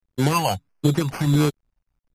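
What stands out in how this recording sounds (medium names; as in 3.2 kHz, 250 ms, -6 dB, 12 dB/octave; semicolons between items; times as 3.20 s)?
a quantiser's noise floor 12-bit, dither none; phasing stages 12, 1.5 Hz, lowest notch 360–1500 Hz; aliases and images of a low sample rate 3.7 kHz, jitter 0%; MP3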